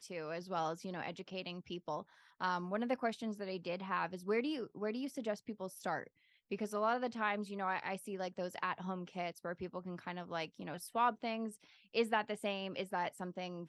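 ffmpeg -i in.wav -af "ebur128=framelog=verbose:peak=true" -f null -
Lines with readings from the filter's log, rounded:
Integrated loudness:
  I:         -39.6 LUFS
  Threshold: -49.7 LUFS
Loudness range:
  LRA:         2.3 LU
  Threshold: -59.7 LUFS
  LRA low:   -40.8 LUFS
  LRA high:  -38.5 LUFS
True peak:
  Peak:      -19.5 dBFS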